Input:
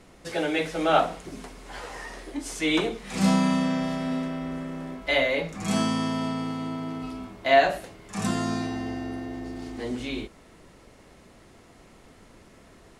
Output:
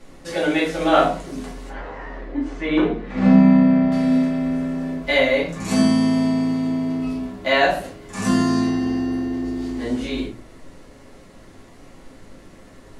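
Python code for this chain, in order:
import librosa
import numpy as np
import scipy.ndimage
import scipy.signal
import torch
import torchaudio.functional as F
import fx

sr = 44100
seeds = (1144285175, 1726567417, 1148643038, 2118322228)

y = fx.lowpass(x, sr, hz=1900.0, slope=12, at=(1.69, 3.92))
y = fx.room_shoebox(y, sr, seeds[0], volume_m3=150.0, walls='furnished', distance_m=2.4)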